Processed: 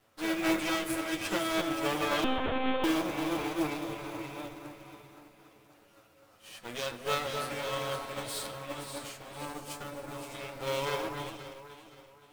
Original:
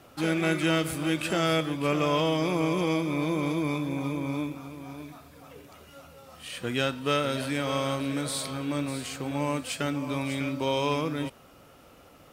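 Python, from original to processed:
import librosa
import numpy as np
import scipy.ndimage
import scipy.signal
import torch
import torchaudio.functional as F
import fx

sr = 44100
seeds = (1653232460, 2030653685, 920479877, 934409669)

y = fx.lower_of_two(x, sr, delay_ms=9.2)
y = fx.low_shelf(y, sr, hz=360.0, db=-4.0)
y = fx.echo_alternate(y, sr, ms=261, hz=1800.0, feedback_pct=69, wet_db=-4.0)
y = fx.quant_float(y, sr, bits=2)
y = fx.lpc_monotone(y, sr, seeds[0], pitch_hz=260.0, order=16, at=(2.24, 2.84))
y = fx.peak_eq(y, sr, hz=2700.0, db=-5.5, octaves=2.0, at=(9.45, 10.35))
y = fx.rev_plate(y, sr, seeds[1], rt60_s=2.2, hf_ratio=0.4, predelay_ms=0, drr_db=13.0)
y = fx.upward_expand(y, sr, threshold_db=-48.0, expansion=1.5)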